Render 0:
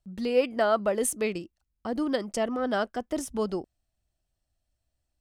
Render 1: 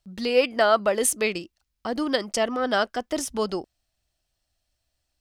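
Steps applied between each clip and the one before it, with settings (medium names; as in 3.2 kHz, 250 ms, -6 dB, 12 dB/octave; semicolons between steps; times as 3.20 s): FFT filter 200 Hz 0 dB, 5 kHz +11 dB, 8 kHz +6 dB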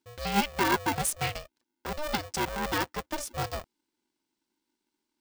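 polarity switched at an audio rate 300 Hz; trim -6.5 dB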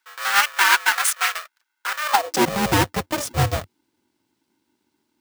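square wave that keeps the level; high-pass sweep 1.4 kHz -> 95 Hz, 2.06–2.60 s; trim +6 dB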